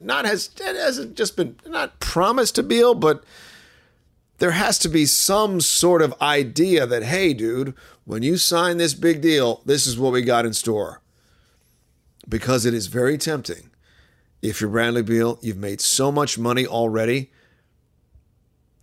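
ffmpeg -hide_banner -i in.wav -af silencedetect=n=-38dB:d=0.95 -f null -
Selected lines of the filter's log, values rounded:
silence_start: 10.97
silence_end: 12.20 | silence_duration: 1.23
silence_start: 17.25
silence_end: 18.82 | silence_duration: 1.58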